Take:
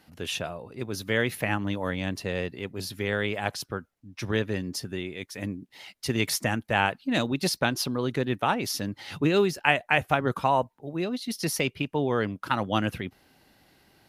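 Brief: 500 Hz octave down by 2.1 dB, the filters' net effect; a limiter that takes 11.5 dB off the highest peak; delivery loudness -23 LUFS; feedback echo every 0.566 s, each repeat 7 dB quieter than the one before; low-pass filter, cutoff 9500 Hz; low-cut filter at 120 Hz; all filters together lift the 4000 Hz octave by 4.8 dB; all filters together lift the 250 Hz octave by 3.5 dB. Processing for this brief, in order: HPF 120 Hz; LPF 9500 Hz; bell 250 Hz +6 dB; bell 500 Hz -5 dB; bell 4000 Hz +6.5 dB; limiter -14 dBFS; feedback echo 0.566 s, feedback 45%, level -7 dB; gain +4.5 dB

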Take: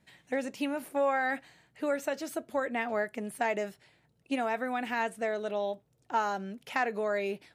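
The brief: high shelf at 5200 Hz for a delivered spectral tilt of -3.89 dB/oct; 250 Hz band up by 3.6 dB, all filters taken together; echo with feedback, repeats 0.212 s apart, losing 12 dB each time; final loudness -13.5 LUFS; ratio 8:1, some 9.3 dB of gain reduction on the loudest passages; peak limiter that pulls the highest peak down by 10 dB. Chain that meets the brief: bell 250 Hz +4 dB; high shelf 5200 Hz +7 dB; compressor 8:1, threshold -33 dBFS; limiter -29 dBFS; feedback echo 0.212 s, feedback 25%, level -12 dB; gain +26 dB

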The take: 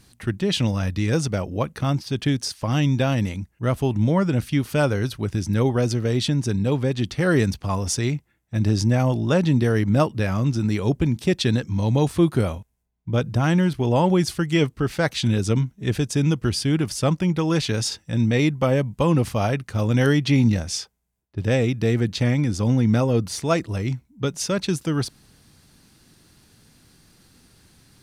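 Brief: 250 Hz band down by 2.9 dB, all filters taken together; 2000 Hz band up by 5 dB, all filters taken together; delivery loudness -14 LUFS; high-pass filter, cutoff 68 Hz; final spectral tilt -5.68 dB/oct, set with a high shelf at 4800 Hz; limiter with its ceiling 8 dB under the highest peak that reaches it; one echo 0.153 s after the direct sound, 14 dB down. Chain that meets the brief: HPF 68 Hz; bell 250 Hz -4 dB; bell 2000 Hz +7 dB; high shelf 4800 Hz -3.5 dB; limiter -13 dBFS; echo 0.153 s -14 dB; gain +10.5 dB

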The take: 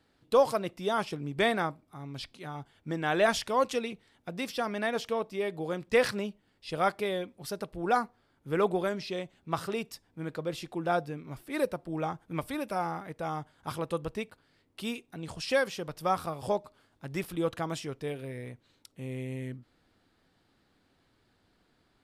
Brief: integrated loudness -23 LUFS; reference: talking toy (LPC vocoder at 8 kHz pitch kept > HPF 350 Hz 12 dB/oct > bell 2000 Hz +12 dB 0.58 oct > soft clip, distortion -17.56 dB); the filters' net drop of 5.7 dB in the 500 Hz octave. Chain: bell 500 Hz -6 dB; LPC vocoder at 8 kHz pitch kept; HPF 350 Hz 12 dB/oct; bell 2000 Hz +12 dB 0.58 oct; soft clip -16.5 dBFS; gain +11 dB

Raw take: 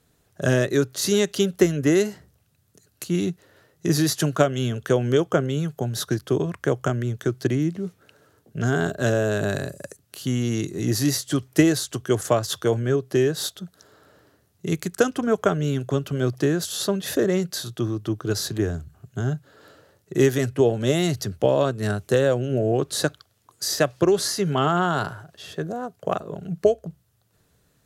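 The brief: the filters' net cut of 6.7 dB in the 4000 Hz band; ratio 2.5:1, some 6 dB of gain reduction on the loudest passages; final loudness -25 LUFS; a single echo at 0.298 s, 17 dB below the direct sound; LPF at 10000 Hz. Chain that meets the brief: LPF 10000 Hz; bell 4000 Hz -8.5 dB; compressor 2.5:1, threshold -21 dBFS; echo 0.298 s -17 dB; gain +2 dB

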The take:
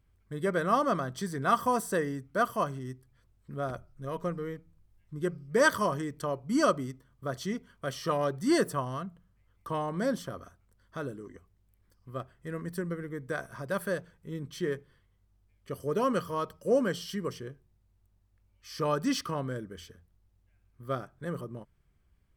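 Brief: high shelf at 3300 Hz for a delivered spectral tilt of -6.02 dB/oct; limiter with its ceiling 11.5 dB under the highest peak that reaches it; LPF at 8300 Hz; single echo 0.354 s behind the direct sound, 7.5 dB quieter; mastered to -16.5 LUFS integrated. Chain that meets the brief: LPF 8300 Hz; high shelf 3300 Hz -8.5 dB; limiter -24 dBFS; echo 0.354 s -7.5 dB; gain +19 dB

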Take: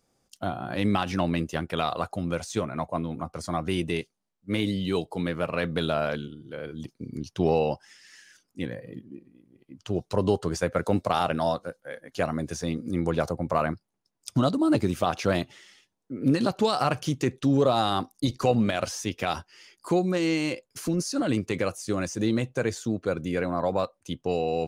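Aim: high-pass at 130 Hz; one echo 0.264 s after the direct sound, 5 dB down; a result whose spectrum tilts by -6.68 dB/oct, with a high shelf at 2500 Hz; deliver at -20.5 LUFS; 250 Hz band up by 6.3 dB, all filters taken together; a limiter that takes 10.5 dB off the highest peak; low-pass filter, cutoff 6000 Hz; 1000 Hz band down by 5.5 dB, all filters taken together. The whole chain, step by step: HPF 130 Hz; LPF 6000 Hz; bell 250 Hz +9 dB; bell 1000 Hz -8.5 dB; high shelf 2500 Hz -4 dB; limiter -16.5 dBFS; echo 0.264 s -5 dB; gain +6 dB

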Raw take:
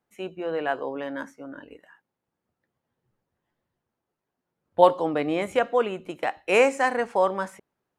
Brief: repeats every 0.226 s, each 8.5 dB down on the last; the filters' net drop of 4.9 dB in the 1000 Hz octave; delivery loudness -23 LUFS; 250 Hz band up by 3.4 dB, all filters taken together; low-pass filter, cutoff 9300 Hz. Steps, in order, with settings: LPF 9300 Hz; bell 250 Hz +5 dB; bell 1000 Hz -7 dB; feedback echo 0.226 s, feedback 38%, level -8.5 dB; gain +2 dB

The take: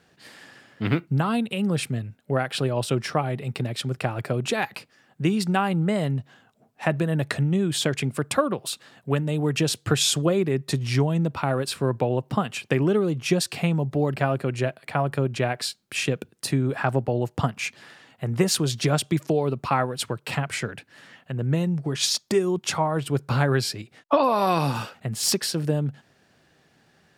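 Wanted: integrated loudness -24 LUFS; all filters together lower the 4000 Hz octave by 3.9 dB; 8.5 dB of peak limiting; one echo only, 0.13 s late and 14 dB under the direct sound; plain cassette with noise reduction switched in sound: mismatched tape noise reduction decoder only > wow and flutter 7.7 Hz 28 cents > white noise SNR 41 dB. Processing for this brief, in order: bell 4000 Hz -5 dB; limiter -15 dBFS; echo 0.13 s -14 dB; mismatched tape noise reduction decoder only; wow and flutter 7.7 Hz 28 cents; white noise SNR 41 dB; gain +3 dB

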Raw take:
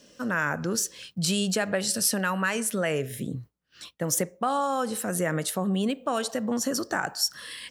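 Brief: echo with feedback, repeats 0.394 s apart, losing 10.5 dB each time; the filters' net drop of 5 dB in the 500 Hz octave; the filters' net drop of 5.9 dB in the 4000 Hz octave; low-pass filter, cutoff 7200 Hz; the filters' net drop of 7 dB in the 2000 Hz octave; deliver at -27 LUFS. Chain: LPF 7200 Hz; bell 500 Hz -5.5 dB; bell 2000 Hz -8.5 dB; bell 4000 Hz -5.5 dB; feedback echo 0.394 s, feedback 30%, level -10.5 dB; gain +4 dB

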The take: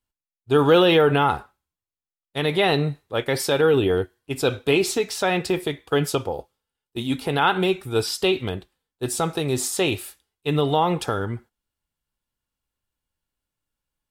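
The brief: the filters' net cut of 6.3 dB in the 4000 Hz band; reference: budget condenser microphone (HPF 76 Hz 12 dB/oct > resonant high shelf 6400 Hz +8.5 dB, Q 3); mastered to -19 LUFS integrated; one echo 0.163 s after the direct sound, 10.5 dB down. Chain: HPF 76 Hz 12 dB/oct; bell 4000 Hz -4.5 dB; resonant high shelf 6400 Hz +8.5 dB, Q 3; echo 0.163 s -10.5 dB; gain +1.5 dB

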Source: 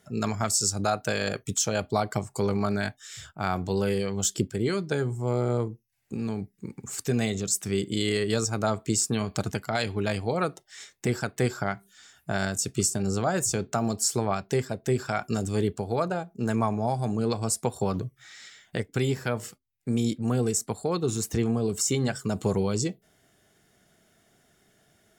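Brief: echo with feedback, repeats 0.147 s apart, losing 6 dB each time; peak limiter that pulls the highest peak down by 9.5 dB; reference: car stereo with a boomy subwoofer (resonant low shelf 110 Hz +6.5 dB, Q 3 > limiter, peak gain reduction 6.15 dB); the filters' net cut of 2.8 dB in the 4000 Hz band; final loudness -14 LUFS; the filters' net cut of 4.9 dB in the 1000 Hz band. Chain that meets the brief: bell 1000 Hz -7 dB; bell 4000 Hz -3.5 dB; limiter -22 dBFS; resonant low shelf 110 Hz +6.5 dB, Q 3; feedback echo 0.147 s, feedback 50%, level -6 dB; gain +18.5 dB; limiter -3.5 dBFS

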